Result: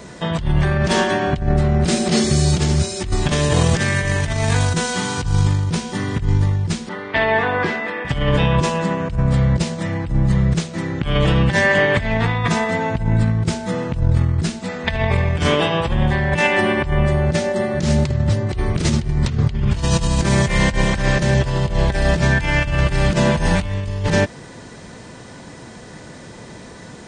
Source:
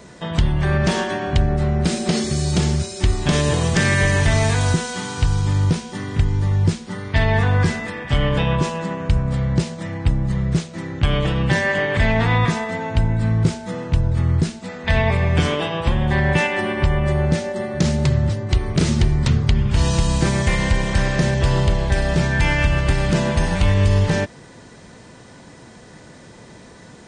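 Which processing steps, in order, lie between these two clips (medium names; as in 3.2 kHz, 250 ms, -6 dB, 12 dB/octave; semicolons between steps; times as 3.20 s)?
6.89–8.05 s: three-band isolator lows -22 dB, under 250 Hz, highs -21 dB, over 3.7 kHz; compressor with a negative ratio -19 dBFS, ratio -0.5; trim +3 dB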